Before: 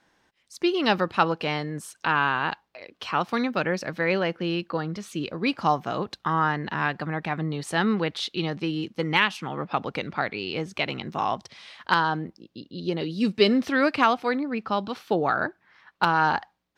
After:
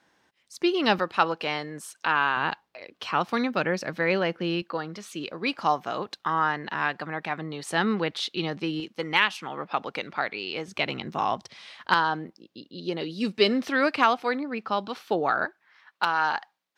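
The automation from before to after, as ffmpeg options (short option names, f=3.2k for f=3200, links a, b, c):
-af "asetnsamples=n=441:p=0,asendcmd='0.99 highpass f 420;2.37 highpass f 110;4.62 highpass f 420;7.7 highpass f 190;8.8 highpass f 480;10.68 highpass f 110;11.94 highpass f 310;15.45 highpass f 1000',highpass=f=110:p=1"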